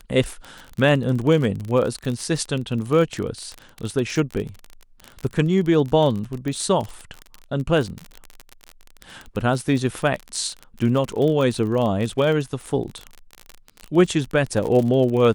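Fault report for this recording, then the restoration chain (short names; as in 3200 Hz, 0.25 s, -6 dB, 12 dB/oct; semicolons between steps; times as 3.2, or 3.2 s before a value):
crackle 31/s -25 dBFS
6.48 pop -17 dBFS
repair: de-click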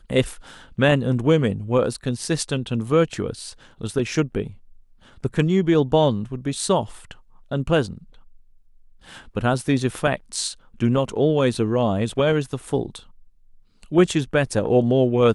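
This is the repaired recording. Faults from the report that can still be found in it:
none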